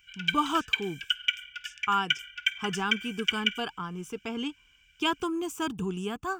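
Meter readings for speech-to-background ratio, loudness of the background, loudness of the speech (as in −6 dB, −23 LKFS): −1.5 dB, −30.5 LKFS, −32.0 LKFS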